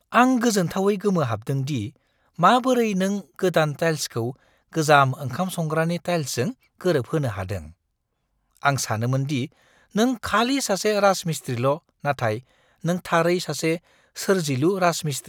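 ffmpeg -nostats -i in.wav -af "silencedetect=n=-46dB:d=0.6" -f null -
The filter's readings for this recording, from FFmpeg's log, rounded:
silence_start: 7.72
silence_end: 8.57 | silence_duration: 0.84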